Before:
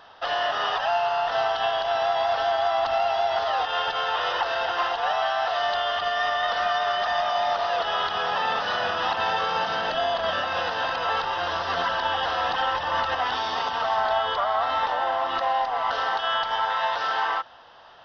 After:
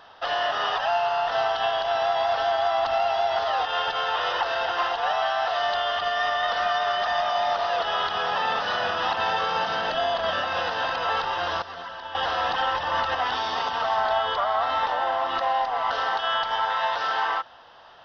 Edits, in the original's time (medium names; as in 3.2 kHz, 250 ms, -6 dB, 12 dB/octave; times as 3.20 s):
11.62–12.15 s: gain -11.5 dB